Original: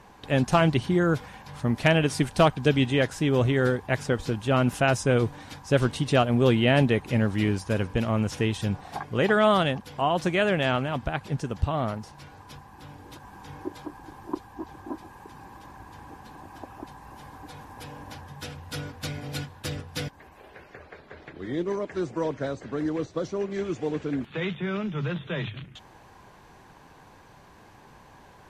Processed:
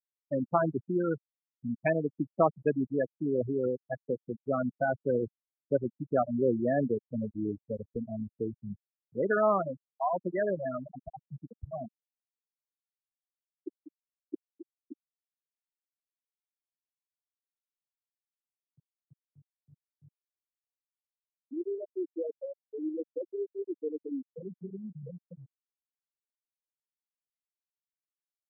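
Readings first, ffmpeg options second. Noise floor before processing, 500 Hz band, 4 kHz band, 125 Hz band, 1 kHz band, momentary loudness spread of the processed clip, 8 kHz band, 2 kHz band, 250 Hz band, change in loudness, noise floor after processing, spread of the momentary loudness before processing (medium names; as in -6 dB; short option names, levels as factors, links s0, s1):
-52 dBFS, -5.0 dB, under -40 dB, -14.5 dB, -7.0 dB, 18 LU, under -35 dB, -12.5 dB, -7.5 dB, -6.5 dB, under -85 dBFS, 22 LU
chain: -filter_complex "[0:a]afftfilt=real='re*gte(hypot(re,im),0.282)':imag='im*gte(hypot(re,im),0.282)':win_size=1024:overlap=0.75,acrossover=split=210 2500:gain=0.178 1 0.2[s0][s1][s2];[s0][s1][s2]amix=inputs=3:normalize=0,volume=0.668"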